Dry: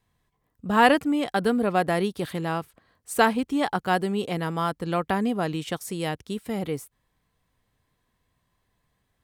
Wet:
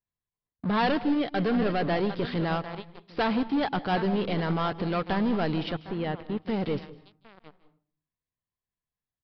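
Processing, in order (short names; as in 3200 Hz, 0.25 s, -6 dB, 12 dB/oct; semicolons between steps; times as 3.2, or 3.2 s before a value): echo 0.755 s -19 dB; sample leveller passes 5; limiter -15.5 dBFS, peak gain reduction 11 dB; 5.72–6.39 air absorption 260 m; downsampling 11025 Hz; 0.99–1.81 bell 930 Hz -8 dB 0.22 oct; reverb RT60 0.45 s, pre-delay 0.154 s, DRR 13.5 dB; upward expander 1.5:1, over -34 dBFS; gain -5.5 dB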